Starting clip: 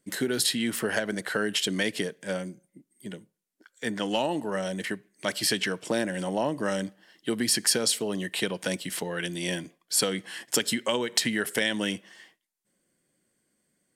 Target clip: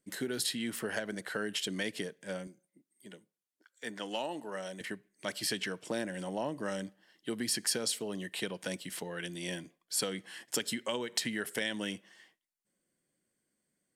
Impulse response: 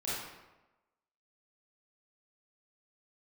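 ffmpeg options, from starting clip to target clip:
-filter_complex "[0:a]asettb=1/sr,asplit=3[link_01][link_02][link_03];[link_01]atrim=end=2.474[link_04];[link_02]atrim=start=2.47:end=4.81,asetpts=PTS-STARTPTS,afade=type=in:duration=0.004:curve=qsin,afade=type=out:start_time=2.336:duration=0.004:curve=qsin,highpass=frequency=350:poles=1[link_05];[link_03]atrim=start=4.806[link_06];[link_04][link_05]acrossfade=duration=0.004:curve1=hsin:curve2=qsin[link_07];[link_07][link_06]acrossfade=duration=0.004:curve1=qsin:curve2=hsin,volume=-8dB"

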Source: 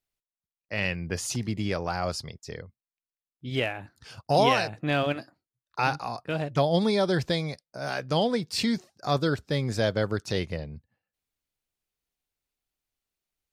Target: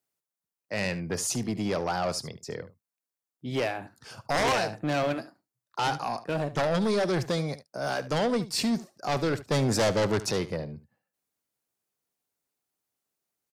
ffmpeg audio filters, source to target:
ffmpeg -i in.wav -filter_complex "[0:a]highpass=67,acrossover=split=120|1800[link_01][link_02][link_03];[link_02]aeval=exprs='0.316*sin(PI/2*2.82*val(0)/0.316)':channel_layout=same[link_04];[link_01][link_04][link_03]amix=inputs=3:normalize=0,asettb=1/sr,asplit=3[link_05][link_06][link_07];[link_05]atrim=end=9.514[link_08];[link_06]atrim=start=9.51:end=10.31,asetpts=PTS-STARTPTS,afade=type=in:duration=0.004:curve=qsin,afade=type=out:start_time=0.796:duration=0.004:curve=qsin,acontrast=78[link_09];[link_07]atrim=start=10.306[link_10];[link_08][link_09]acrossfade=duration=0.004:curve1=hsin:curve2=qsin[link_11];[link_11][link_10]acrossfade=duration=0.004:curve1=qsin:curve2=hsin,asoftclip=type=tanh:threshold=-12dB,bass=frequency=250:gain=-1,treble=frequency=4000:gain=13,asplit=2[link_12][link_13];[link_13]aecho=0:1:73:0.158[link_14];[link_12][link_14]amix=inputs=2:normalize=0,volume=-8.5dB" out.wav

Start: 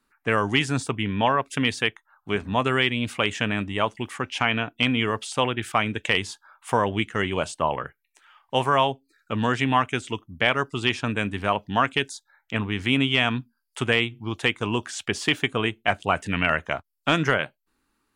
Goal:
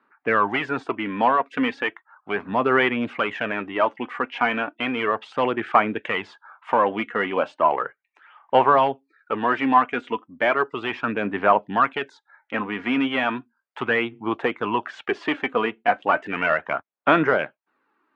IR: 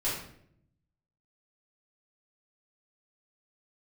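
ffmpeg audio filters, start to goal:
-filter_complex "[0:a]asplit=2[link_01][link_02];[link_02]highpass=frequency=720:poles=1,volume=15dB,asoftclip=type=tanh:threshold=-6.5dB[link_03];[link_01][link_03]amix=inputs=2:normalize=0,lowpass=frequency=1500:poles=1,volume=-6dB,aphaser=in_gain=1:out_gain=1:delay=4.2:decay=0.41:speed=0.35:type=sinusoidal,highpass=210,lowpass=2100"

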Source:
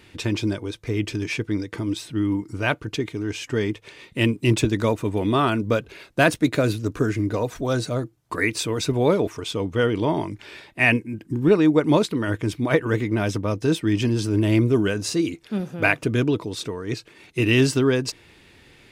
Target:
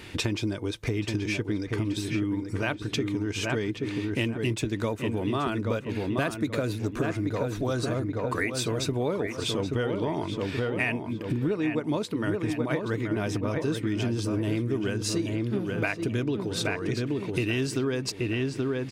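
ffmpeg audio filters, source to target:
ffmpeg -i in.wav -filter_complex "[0:a]asplit=2[link_01][link_02];[link_02]adelay=828,lowpass=frequency=2600:poles=1,volume=-6dB,asplit=2[link_03][link_04];[link_04]adelay=828,lowpass=frequency=2600:poles=1,volume=0.37,asplit=2[link_05][link_06];[link_06]adelay=828,lowpass=frequency=2600:poles=1,volume=0.37,asplit=2[link_07][link_08];[link_08]adelay=828,lowpass=frequency=2600:poles=1,volume=0.37[link_09];[link_01][link_03][link_05][link_07][link_09]amix=inputs=5:normalize=0,acompressor=threshold=-33dB:ratio=6,volume=7dB" out.wav

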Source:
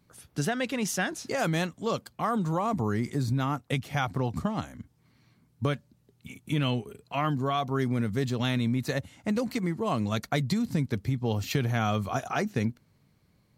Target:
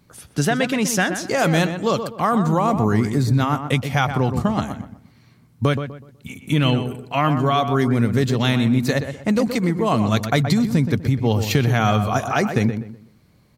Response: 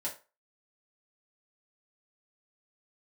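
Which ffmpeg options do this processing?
-filter_complex "[0:a]asplit=2[link_01][link_02];[link_02]adelay=124,lowpass=frequency=2000:poles=1,volume=-8dB,asplit=2[link_03][link_04];[link_04]adelay=124,lowpass=frequency=2000:poles=1,volume=0.32,asplit=2[link_05][link_06];[link_06]adelay=124,lowpass=frequency=2000:poles=1,volume=0.32,asplit=2[link_07][link_08];[link_08]adelay=124,lowpass=frequency=2000:poles=1,volume=0.32[link_09];[link_01][link_03][link_05][link_07][link_09]amix=inputs=5:normalize=0,volume=9dB"

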